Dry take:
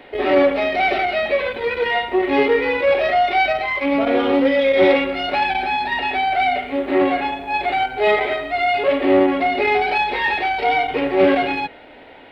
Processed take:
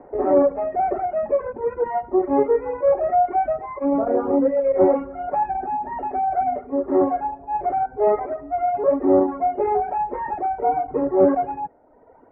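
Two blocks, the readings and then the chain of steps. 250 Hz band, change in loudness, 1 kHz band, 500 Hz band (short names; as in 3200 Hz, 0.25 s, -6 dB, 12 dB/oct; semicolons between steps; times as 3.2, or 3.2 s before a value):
-2.5 dB, -3.5 dB, -2.0 dB, -2.0 dB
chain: inverse Chebyshev low-pass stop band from 3700 Hz, stop band 60 dB; reverb removal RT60 1.4 s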